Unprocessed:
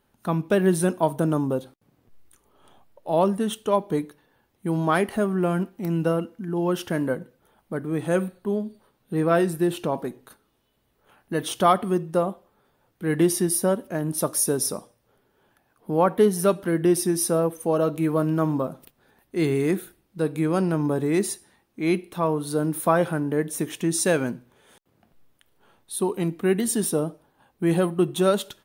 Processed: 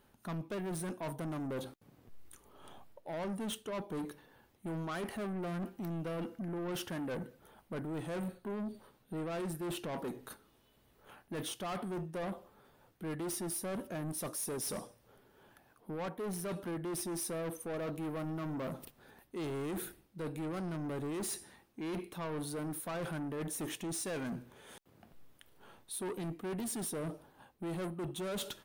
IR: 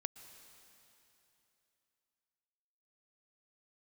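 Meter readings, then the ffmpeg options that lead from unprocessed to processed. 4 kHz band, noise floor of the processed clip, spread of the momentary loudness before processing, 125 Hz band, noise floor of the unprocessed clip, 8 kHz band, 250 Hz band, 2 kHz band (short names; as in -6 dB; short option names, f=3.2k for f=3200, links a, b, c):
-10.0 dB, -69 dBFS, 9 LU, -14.0 dB, -69 dBFS, -12.5 dB, -15.0 dB, -14.0 dB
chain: -af "areverse,acompressor=threshold=-30dB:ratio=8,areverse,asoftclip=type=tanh:threshold=-37dB,volume=1.5dB"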